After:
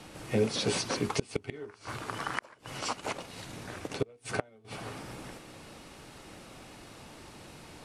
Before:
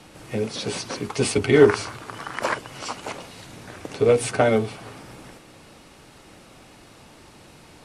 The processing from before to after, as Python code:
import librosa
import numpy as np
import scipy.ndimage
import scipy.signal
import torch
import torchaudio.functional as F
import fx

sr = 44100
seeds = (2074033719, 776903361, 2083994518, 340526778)

y = fx.gate_flip(x, sr, shuts_db=-12.0, range_db=-29)
y = fx.transient(y, sr, attack_db=-3, sustain_db=-8, at=(2.8, 4.65))
y = y * 10.0 ** (-1.0 / 20.0)